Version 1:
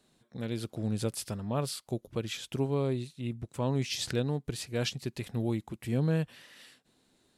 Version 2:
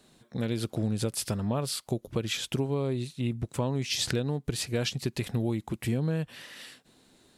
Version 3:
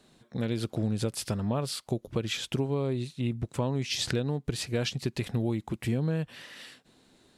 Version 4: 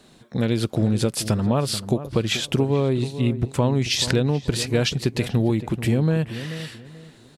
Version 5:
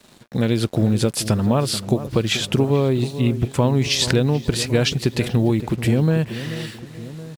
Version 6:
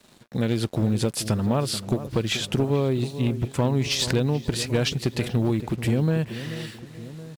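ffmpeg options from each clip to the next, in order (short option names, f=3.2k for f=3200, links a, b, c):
-af "acompressor=threshold=-33dB:ratio=6,volume=8dB"
-af "highshelf=f=9.1k:g=-8"
-filter_complex "[0:a]asplit=2[a][b];[b]adelay=434,lowpass=f=1.3k:p=1,volume=-12dB,asplit=2[c][d];[d]adelay=434,lowpass=f=1.3k:p=1,volume=0.29,asplit=2[e][f];[f]adelay=434,lowpass=f=1.3k:p=1,volume=0.29[g];[a][c][e][g]amix=inputs=4:normalize=0,volume=8.5dB"
-filter_complex "[0:a]asplit=2[a][b];[b]adelay=1108,volume=-17dB,highshelf=f=4k:g=-24.9[c];[a][c]amix=inputs=2:normalize=0,acrusher=bits=7:mix=0:aa=0.5,volume=2.5dB"
-af "aeval=exprs='clip(val(0),-1,0.188)':c=same,volume=-4.5dB"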